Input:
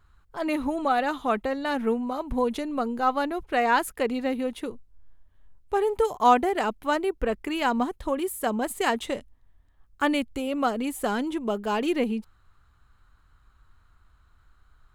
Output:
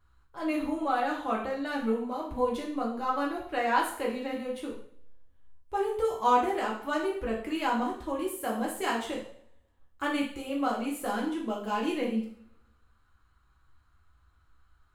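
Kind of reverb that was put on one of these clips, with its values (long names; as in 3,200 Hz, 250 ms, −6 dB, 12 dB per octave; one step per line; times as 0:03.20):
coupled-rooms reverb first 0.53 s, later 1.5 s, from −27 dB, DRR −3.5 dB
level −9.5 dB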